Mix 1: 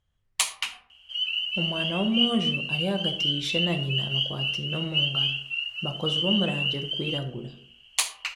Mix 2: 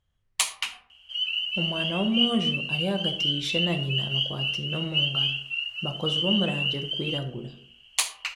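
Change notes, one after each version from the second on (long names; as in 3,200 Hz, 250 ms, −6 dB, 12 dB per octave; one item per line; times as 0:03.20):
nothing changed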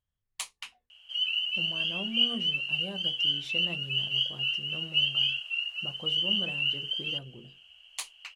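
speech −10.5 dB
reverb: off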